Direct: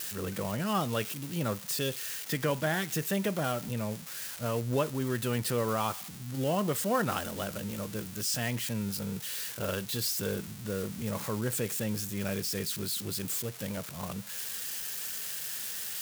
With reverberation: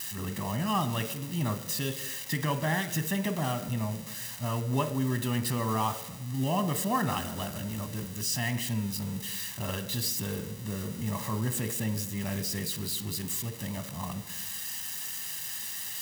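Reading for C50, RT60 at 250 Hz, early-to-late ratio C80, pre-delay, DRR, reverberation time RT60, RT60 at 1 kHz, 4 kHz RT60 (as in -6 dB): 12.5 dB, 1.3 s, 15.0 dB, 8 ms, 9.5 dB, 1.1 s, 1.0 s, 0.80 s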